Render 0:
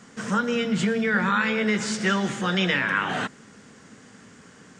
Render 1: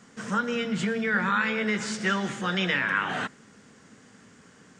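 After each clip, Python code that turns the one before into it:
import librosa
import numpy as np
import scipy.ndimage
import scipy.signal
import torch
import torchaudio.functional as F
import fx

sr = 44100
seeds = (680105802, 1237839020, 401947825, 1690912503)

y = fx.dynamic_eq(x, sr, hz=1600.0, q=0.77, threshold_db=-34.0, ratio=4.0, max_db=3)
y = F.gain(torch.from_numpy(y), -4.5).numpy()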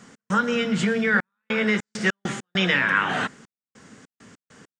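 y = fx.step_gate(x, sr, bpm=100, pattern='x.xxxxxx..xx.x.', floor_db=-60.0, edge_ms=4.5)
y = F.gain(torch.from_numpy(y), 5.0).numpy()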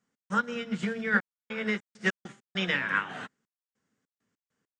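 y = fx.upward_expand(x, sr, threshold_db=-36.0, expansion=2.5)
y = F.gain(torch.from_numpy(y), -2.5).numpy()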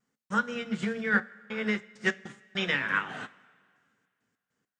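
y = fx.rev_double_slope(x, sr, seeds[0], early_s=0.24, late_s=2.1, knee_db=-18, drr_db=12.5)
y = fx.vibrato(y, sr, rate_hz=0.5, depth_cents=14.0)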